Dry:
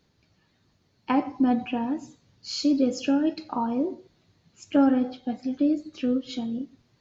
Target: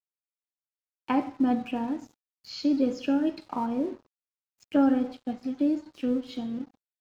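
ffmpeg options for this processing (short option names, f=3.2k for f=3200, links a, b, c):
-filter_complex "[0:a]asplit=2[a][b];[b]adelay=69,lowpass=f=4.3k:p=1,volume=-18dB,asplit=2[c][d];[d]adelay=69,lowpass=f=4.3k:p=1,volume=0.43,asplit=2[e][f];[f]adelay=69,lowpass=f=4.3k:p=1,volume=0.43,asplit=2[g][h];[h]adelay=69,lowpass=f=4.3k:p=1,volume=0.43[i];[c][e][g][i]amix=inputs=4:normalize=0[j];[a][j]amix=inputs=2:normalize=0,aeval=exprs='sgn(val(0))*max(abs(val(0))-0.00422,0)':c=same,acrossover=split=4700[k][l];[l]acompressor=threshold=-55dB:ratio=4:attack=1:release=60[m];[k][m]amix=inputs=2:normalize=0,volume=-2dB"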